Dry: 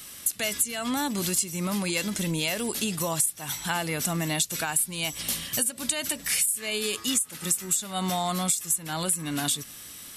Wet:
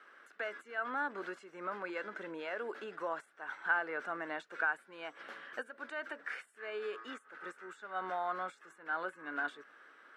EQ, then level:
four-pole ladder high-pass 340 Hz, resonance 40%
low-pass with resonance 1,500 Hz, resonance Q 6.2
−4.0 dB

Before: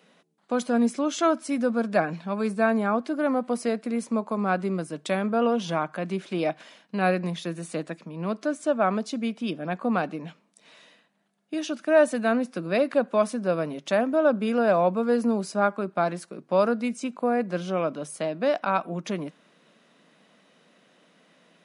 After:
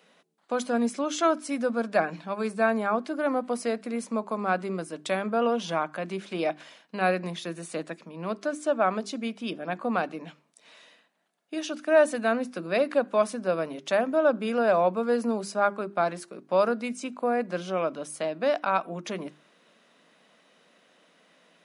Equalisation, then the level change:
low-shelf EQ 180 Hz −10.5 dB
mains-hum notches 50/100/150/200/250/300/350/400 Hz
0.0 dB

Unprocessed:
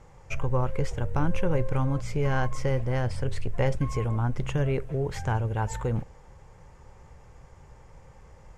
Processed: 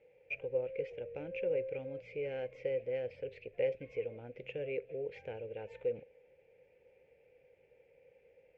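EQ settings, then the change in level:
pair of resonant band-passes 1,100 Hz, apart 2.3 octaves
high-frequency loss of the air 160 metres
+1.0 dB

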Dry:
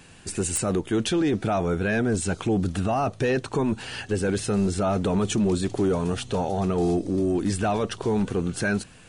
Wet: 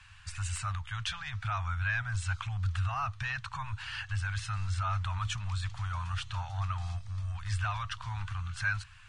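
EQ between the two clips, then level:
elliptic band-stop filter 100–1,100 Hz, stop band 70 dB
low-pass filter 3,200 Hz 6 dB per octave
high-frequency loss of the air 53 metres
0.0 dB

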